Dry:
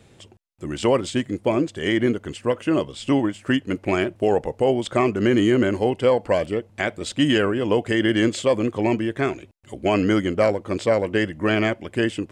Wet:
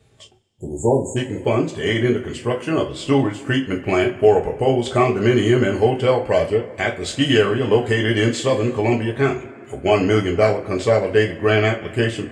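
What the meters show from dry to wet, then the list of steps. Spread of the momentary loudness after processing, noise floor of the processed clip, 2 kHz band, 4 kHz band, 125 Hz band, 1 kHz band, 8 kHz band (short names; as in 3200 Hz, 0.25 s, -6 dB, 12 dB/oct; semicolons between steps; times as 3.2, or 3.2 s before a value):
7 LU, -42 dBFS, +3.0 dB, +3.5 dB, +6.5 dB, +3.5 dB, +3.5 dB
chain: spectral delete 0.52–1.17, 1000–6500 Hz; two-slope reverb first 0.25 s, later 2.5 s, from -22 dB, DRR -0.5 dB; spectral noise reduction 8 dB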